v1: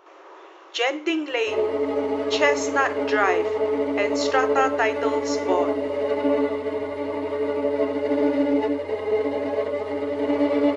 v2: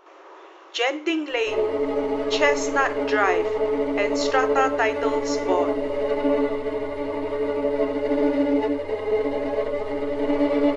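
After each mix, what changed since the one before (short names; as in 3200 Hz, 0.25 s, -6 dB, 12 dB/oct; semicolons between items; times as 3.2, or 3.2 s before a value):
master: remove HPF 67 Hz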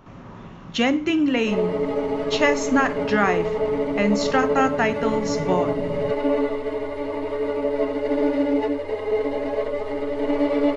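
speech: remove brick-wall FIR high-pass 310 Hz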